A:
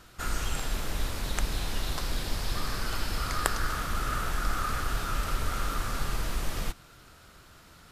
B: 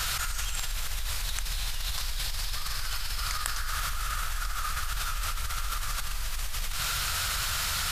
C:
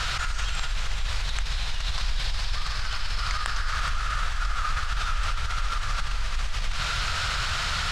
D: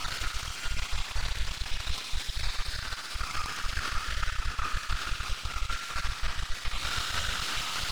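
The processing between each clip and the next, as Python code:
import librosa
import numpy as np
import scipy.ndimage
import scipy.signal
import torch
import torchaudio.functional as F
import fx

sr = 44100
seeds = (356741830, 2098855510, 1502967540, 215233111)

y1 = fx.tone_stack(x, sr, knobs='10-0-10')
y1 = fx.env_flatten(y1, sr, amount_pct=100)
y1 = F.gain(torch.from_numpy(y1), -2.0).numpy()
y2 = fx.air_absorb(y1, sr, metres=120.0)
y2 = y2 + 10.0 ** (-10.0 / 20.0) * np.pad(y2, (int(418 * sr / 1000.0), 0))[:len(y2)]
y2 = F.gain(torch.from_numpy(y2), 5.0).numpy()
y3 = fx.spec_dropout(y2, sr, seeds[0], share_pct=37)
y3 = np.maximum(y3, 0.0)
y3 = fx.echo_thinned(y3, sr, ms=64, feedback_pct=84, hz=720.0, wet_db=-5.0)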